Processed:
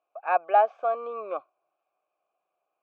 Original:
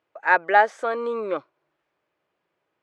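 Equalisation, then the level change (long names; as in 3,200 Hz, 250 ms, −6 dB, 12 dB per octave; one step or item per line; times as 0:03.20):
formant filter a
high-frequency loss of the air 130 metres
notch filter 1,900 Hz, Q 11
+6.5 dB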